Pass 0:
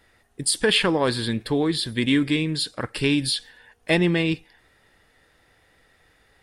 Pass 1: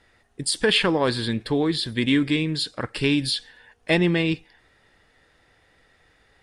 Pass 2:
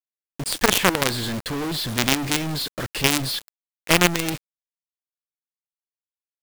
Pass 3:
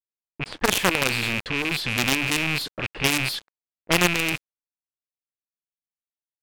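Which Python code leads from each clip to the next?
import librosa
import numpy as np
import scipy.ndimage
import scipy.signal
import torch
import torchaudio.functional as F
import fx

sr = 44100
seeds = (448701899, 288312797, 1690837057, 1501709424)

y1 = scipy.signal.sosfilt(scipy.signal.butter(2, 8300.0, 'lowpass', fs=sr, output='sos'), x)
y2 = fx.diode_clip(y1, sr, knee_db=-16.5)
y2 = fx.quant_companded(y2, sr, bits=2)
y2 = y2 * 10.0 ** (-1.0 / 20.0)
y3 = fx.rattle_buzz(y2, sr, strikes_db=-33.0, level_db=-10.0)
y3 = fx.env_lowpass(y3, sr, base_hz=370.0, full_db=-18.0)
y3 = y3 * 10.0 ** (-3.0 / 20.0)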